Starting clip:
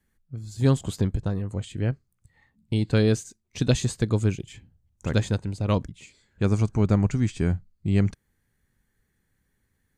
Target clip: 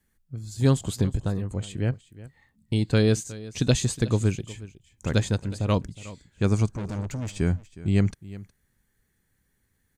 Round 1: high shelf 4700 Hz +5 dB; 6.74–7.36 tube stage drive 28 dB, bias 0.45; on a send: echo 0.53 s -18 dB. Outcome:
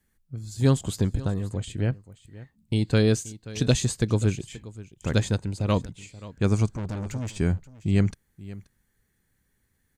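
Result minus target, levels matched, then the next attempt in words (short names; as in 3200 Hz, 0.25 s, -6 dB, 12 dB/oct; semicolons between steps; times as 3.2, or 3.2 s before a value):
echo 0.166 s late
high shelf 4700 Hz +5 dB; 6.74–7.36 tube stage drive 28 dB, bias 0.45; on a send: echo 0.364 s -18 dB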